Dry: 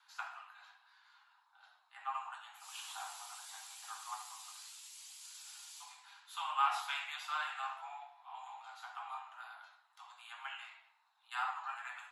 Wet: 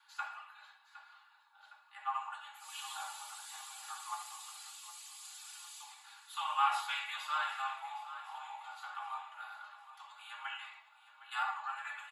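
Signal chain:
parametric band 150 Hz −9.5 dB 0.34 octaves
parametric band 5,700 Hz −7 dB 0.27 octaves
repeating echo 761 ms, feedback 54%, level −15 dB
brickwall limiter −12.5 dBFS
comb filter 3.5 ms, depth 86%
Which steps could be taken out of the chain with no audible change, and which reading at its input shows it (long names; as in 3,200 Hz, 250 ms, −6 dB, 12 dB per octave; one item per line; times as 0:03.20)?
parametric band 150 Hz: nothing at its input below 600 Hz
brickwall limiter −12.5 dBFS: peak of its input −18.5 dBFS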